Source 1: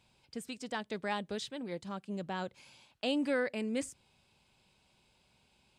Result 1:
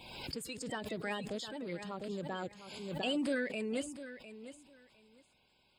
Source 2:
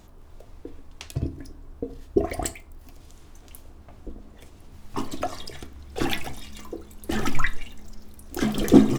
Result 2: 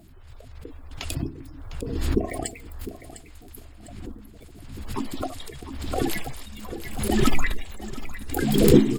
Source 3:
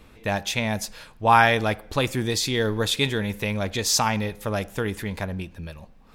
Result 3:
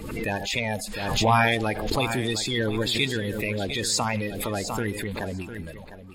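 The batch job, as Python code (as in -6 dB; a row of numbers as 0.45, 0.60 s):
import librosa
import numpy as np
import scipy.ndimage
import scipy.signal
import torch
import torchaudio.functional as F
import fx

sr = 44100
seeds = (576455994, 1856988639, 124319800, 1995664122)

p1 = fx.spec_quant(x, sr, step_db=30)
p2 = fx.notch(p1, sr, hz=5900.0, q=5.5)
p3 = fx.dynamic_eq(p2, sr, hz=1300.0, q=2.0, threshold_db=-43.0, ratio=4.0, max_db=-6)
p4 = p3 + fx.echo_feedback(p3, sr, ms=704, feedback_pct=18, wet_db=-13, dry=0)
p5 = fx.pre_swell(p4, sr, db_per_s=42.0)
y = p5 * 10.0 ** (-1.5 / 20.0)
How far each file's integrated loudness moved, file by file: -2.0, +1.0, -2.0 LU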